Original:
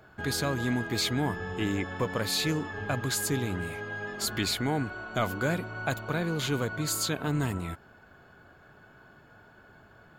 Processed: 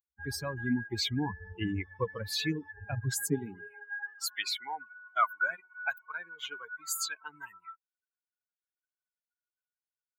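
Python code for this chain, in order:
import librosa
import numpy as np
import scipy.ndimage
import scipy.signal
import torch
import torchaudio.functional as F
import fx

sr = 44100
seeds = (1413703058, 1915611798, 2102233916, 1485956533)

y = fx.bin_expand(x, sr, power=3.0)
y = fx.filter_sweep_highpass(y, sr, from_hz=61.0, to_hz=1200.0, start_s=2.87, end_s=4.14, q=2.7)
y = y * librosa.db_to_amplitude(2.5)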